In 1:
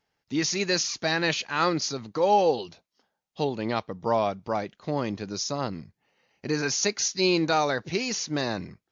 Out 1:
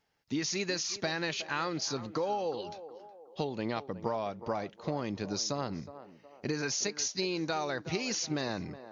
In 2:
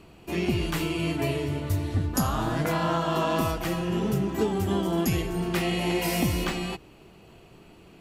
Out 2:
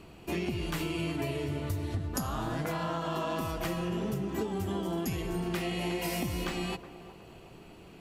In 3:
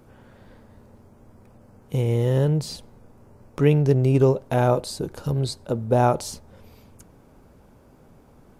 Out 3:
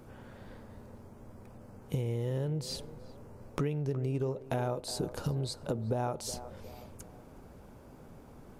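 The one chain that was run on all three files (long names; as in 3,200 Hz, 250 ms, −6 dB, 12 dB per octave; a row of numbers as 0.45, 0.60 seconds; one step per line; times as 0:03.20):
downward compressor 16 to 1, threshold −29 dBFS
feedback echo with a band-pass in the loop 367 ms, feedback 47%, band-pass 630 Hz, level −12 dB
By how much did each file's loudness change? −7.5, −6.5, −13.0 LU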